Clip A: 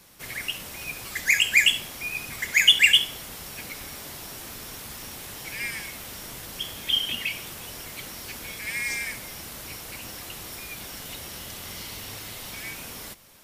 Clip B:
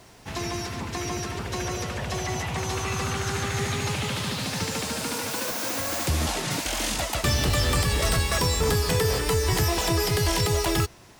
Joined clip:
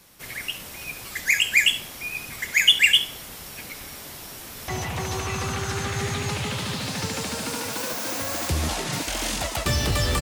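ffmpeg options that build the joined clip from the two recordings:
-filter_complex "[0:a]apad=whole_dur=10.21,atrim=end=10.21,atrim=end=4.682[s0];[1:a]atrim=start=2.258:end=7.79[s1];[s0][s1]acrossfade=d=0.004:c1=hsin:c2=hsin,asplit=2[s2][s3];[s3]afade=t=in:st=4.04:d=0.01,afade=t=out:st=4.68:d=0.01,aecho=0:1:520|1040|1560|2080|2600:0.501187|0.200475|0.08019|0.032076|0.0128304[s4];[s2][s4]amix=inputs=2:normalize=0"

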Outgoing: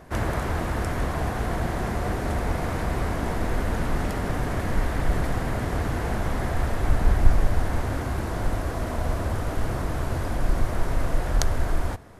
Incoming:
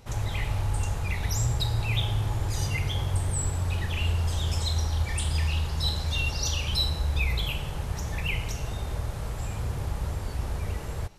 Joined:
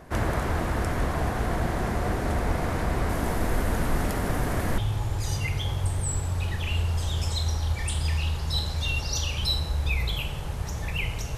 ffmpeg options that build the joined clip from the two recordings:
-filter_complex "[0:a]asettb=1/sr,asplit=3[s0][s1][s2];[s0]atrim=end=3.094[s3];[s1]atrim=start=3.09:end=4.78,asetpts=PTS-STARTPTS,afade=t=in:d=0.004:c=qsin,afade=t=out:st=1.686:d=0.004:c=qsin,highshelf=f=9500:g=10.5[s4];[s2]atrim=start=4.776[s5];[s3][s4]acrossfade=d=0.004:c1=hsin:c2=qsin[s6];[s6][s5]acrossfade=d=0.004:c1=qsin:c2=hsin,apad=whole_dur=11.37,atrim=end=11.37,atrim=end=4.782[s7];[1:a]atrim=start=2.078:end=8.67[s8];[s7][s8]acrossfade=d=0.004:c1=hsin:c2=hsin"

